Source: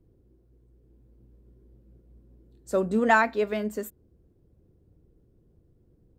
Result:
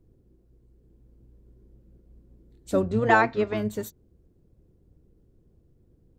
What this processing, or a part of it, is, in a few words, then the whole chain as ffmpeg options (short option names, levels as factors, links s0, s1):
octave pedal: -filter_complex "[0:a]asplit=2[s0][s1];[s1]asetrate=22050,aresample=44100,atempo=2,volume=0.562[s2];[s0][s2]amix=inputs=2:normalize=0,asettb=1/sr,asplit=3[s3][s4][s5];[s3]atrim=end=2.824[s6];[s4]atrim=start=2.82:end=3.57,asetpts=PTS-STARTPTS,afade=t=in:d=0.004:c=qsin,afade=t=out:st=0.746:d=0.004:c=qsin,lowpass=f=6700:w=0.5412,lowpass=f=6700:w=1.3066[s7];[s5]atrim=start=3.566[s8];[s6][s7]acrossfade=d=0.004:c1=hsin:c2=qsin[s9];[s9][s8]acrossfade=d=0.004:c1=qsin:c2=hsin"